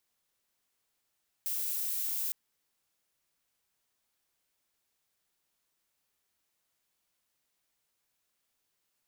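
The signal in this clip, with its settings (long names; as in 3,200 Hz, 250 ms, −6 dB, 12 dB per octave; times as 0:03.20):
noise violet, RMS −33.5 dBFS 0.86 s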